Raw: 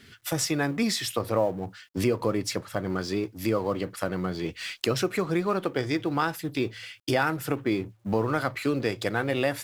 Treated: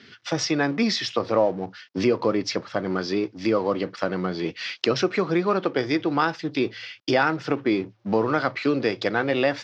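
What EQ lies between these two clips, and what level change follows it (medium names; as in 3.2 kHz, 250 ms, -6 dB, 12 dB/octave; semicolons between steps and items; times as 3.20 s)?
high-pass 180 Hz 12 dB/octave; resonant low-pass 5.6 kHz, resonance Q 2.8; distance through air 200 m; +5.0 dB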